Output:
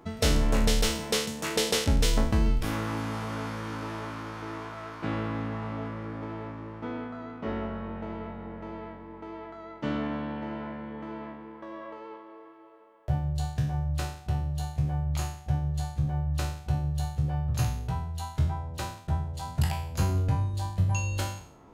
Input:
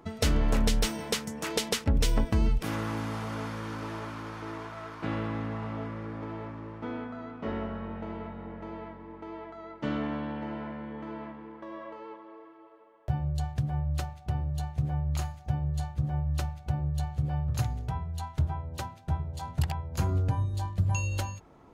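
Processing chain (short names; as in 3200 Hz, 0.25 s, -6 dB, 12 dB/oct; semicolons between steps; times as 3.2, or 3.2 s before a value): spectral trails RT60 0.57 s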